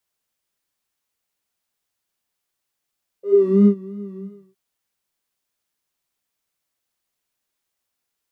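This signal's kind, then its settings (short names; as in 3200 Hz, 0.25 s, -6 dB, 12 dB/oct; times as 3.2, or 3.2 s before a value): synth patch with vibrato G4, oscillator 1 triangle, oscillator 2 square, interval 0 st, detune 27 cents, sub -16 dB, noise -16 dB, filter bandpass, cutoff 130 Hz, Q 11, filter envelope 2 oct, filter decay 0.31 s, filter sustain 35%, attack 0.425 s, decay 0.09 s, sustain -20.5 dB, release 0.37 s, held 0.95 s, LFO 3 Hz, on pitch 69 cents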